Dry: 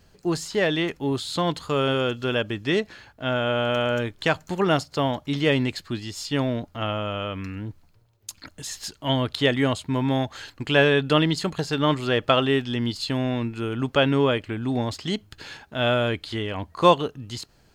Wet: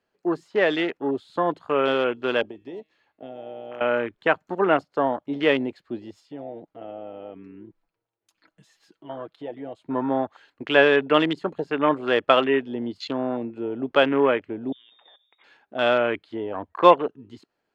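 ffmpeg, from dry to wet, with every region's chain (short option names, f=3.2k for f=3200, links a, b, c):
-filter_complex "[0:a]asettb=1/sr,asplit=3[a][b][c];[a]atrim=end=2.434[d];[b]atrim=start=2.43:end=3.81,asetpts=PTS-STARTPTS,afade=t=in:d=0.004:c=qsin,afade=t=out:st=1.376:d=0.004:c=qsin,bandreject=f=1.5k:w=6.4,bandreject=f=156.2:t=h:w=4,bandreject=f=312.4:t=h:w=4,bandreject=f=468.6:t=h:w=4,bandreject=f=624.8:t=h:w=4,bandreject=f=781:t=h:w=4,bandreject=f=937.2:t=h:w=4,bandreject=f=1.0934k:t=h:w=4,bandreject=f=1.2496k:t=h:w=4,bandreject=f=1.4058k:t=h:w=4,bandreject=f=1.562k:t=h:w=4,bandreject=f=1.7182k:t=h:w=4,bandreject=f=1.8744k:t=h:w=4,bandreject=f=2.0306k:t=h:w=4,bandreject=f=2.1868k:t=h:w=4,bandreject=f=2.343k:t=h:w=4,bandreject=f=2.4992k:t=h:w=4,bandreject=f=2.6554k:t=h:w=4,bandreject=f=2.8116k:t=h:w=4,bandreject=f=2.9678k:t=h:w=4,bandreject=f=3.124k:t=h:w=4,bandreject=f=3.2802k:t=h:w=4,bandreject=f=3.4364k:t=h:w=4,bandreject=f=3.5926k:t=h:w=4,bandreject=f=3.7488k:t=h:w=4,bandreject=f=3.905k:t=h:w=4,bandreject=f=4.0612k:t=h:w=4,bandreject=f=4.2174k:t=h:w=4,bandreject=f=4.3736k:t=h:w=4,bandreject=f=4.5298k:t=h:w=4,bandreject=f=4.686k:t=h:w=4,acrossover=split=120|3600[e][f][g];[e]acompressor=threshold=-49dB:ratio=4[h];[f]acompressor=threshold=-37dB:ratio=4[i];[g]acompressor=threshold=-42dB:ratio=4[j];[h][i][j]amix=inputs=3:normalize=0[k];[c]atrim=start=3.806[l];[d][k]acrossfade=d=0.004:c1=hsin:c2=qsin[m];[m][l]acrossfade=d=0.004:c1=qsin:c2=hsin,asettb=1/sr,asplit=3[n][o][p];[n]atrim=end=6.204[q];[o]atrim=start=6.2:end=9.83,asetpts=PTS-STARTPTS,afade=t=in:d=0.004:c=qsin,afade=t=out:st=3.626:d=0.004:c=qsin,aecho=1:1:6.1:0.5,atrim=end_sample=160083,acompressor=threshold=-39dB:ratio=2:attack=3.2:release=140:knee=1:detection=peak[r];[p]atrim=start=9.826[s];[q][r]acrossfade=d=0.004:c1=hsin:c2=qsin[t];[t][s]acrossfade=d=0.004:c1=qsin:c2=hsin,asettb=1/sr,asplit=3[u][v][w];[u]atrim=end=14.724[x];[v]atrim=start=14.72:end=15.44,asetpts=PTS-STARTPTS,afade=t=in:d=0.004:c=qsin,afade=t=out:st=0.716:d=0.004:c=qsin,bandreject=f=117.9:t=h:w=4,bandreject=f=235.8:t=h:w=4,bandreject=f=353.7:t=h:w=4,bandreject=f=471.6:t=h:w=4,bandreject=f=589.5:t=h:w=4,acompressor=threshold=-32dB:ratio=6:attack=3.2:release=140:knee=1:detection=peak,lowpass=f=3.2k:t=q:w=0.5098,lowpass=f=3.2k:t=q:w=0.6013,lowpass=f=3.2k:t=q:w=0.9,lowpass=f=3.2k:t=q:w=2.563,afreqshift=-3800[y];[w]atrim=start=15.436[z];[x][y]acrossfade=d=0.004:c1=hsin:c2=qsin[aa];[aa][z]acrossfade=d=0.004:c1=qsin:c2=hsin,equalizer=f=98:t=o:w=0.3:g=5,afwtdn=0.0282,acrossover=split=250 3200:gain=0.0631 1 0.2[ab][ac][ad];[ab][ac][ad]amix=inputs=3:normalize=0,volume=3dB"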